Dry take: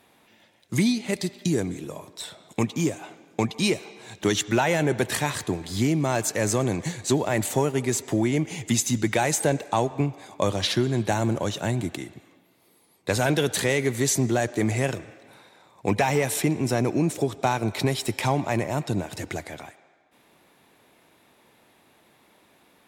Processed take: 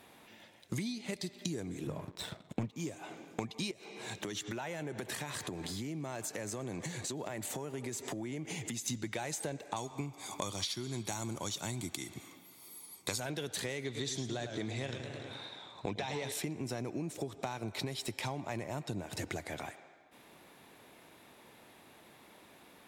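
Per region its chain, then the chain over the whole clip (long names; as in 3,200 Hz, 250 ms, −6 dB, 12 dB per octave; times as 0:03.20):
0:01.87–0:02.73: bass and treble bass +10 dB, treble −10 dB + leveller curve on the samples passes 2 + expander for the loud parts, over −26 dBFS
0:03.71–0:08.88: downward compressor, threshold −36 dBFS + high-pass filter 100 Hz
0:09.76–0:13.20: bass and treble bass −4 dB, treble +11 dB + comb filter 0.9 ms, depth 43%
0:13.84–0:16.32: low-pass filter 6,900 Hz + parametric band 3,600 Hz +12.5 dB 0.26 octaves + feedback echo with a swinging delay time 105 ms, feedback 45%, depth 145 cents, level −9 dB
whole clip: dynamic equaliser 4,300 Hz, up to +4 dB, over −40 dBFS, Q 1.2; downward compressor 10 to 1, threshold −36 dBFS; level +1 dB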